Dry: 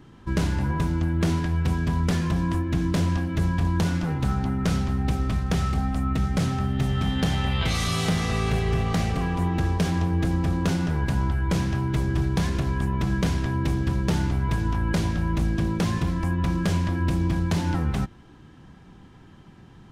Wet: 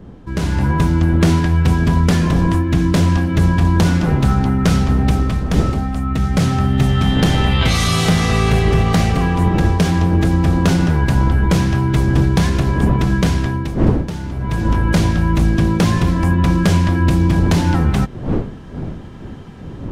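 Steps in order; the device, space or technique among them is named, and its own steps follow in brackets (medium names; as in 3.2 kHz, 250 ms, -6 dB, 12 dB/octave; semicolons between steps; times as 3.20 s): smartphone video outdoors (wind noise; level rider gain up to 12 dB; trim -1 dB; AAC 128 kbps 48 kHz)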